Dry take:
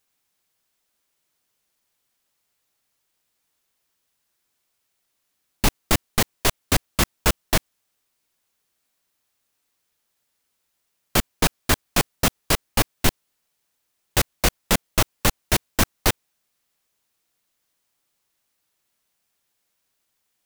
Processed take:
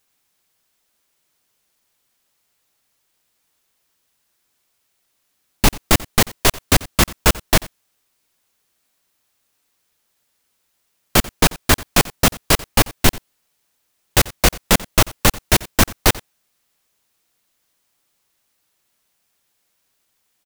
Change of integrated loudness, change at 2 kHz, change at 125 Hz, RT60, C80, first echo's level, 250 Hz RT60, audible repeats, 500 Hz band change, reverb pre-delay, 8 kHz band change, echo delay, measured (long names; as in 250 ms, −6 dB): +5.5 dB, +5.5 dB, +5.5 dB, no reverb audible, no reverb audible, −20.5 dB, no reverb audible, 1, +5.5 dB, no reverb audible, +5.5 dB, 89 ms